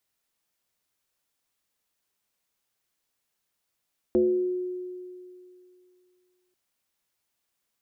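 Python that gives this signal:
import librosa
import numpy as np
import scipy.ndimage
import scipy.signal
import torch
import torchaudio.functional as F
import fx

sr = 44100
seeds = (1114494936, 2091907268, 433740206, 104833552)

y = fx.fm2(sr, length_s=2.39, level_db=-17, carrier_hz=363.0, ratio=0.39, index=0.85, index_s=0.86, decay_s=2.53, shape='exponential')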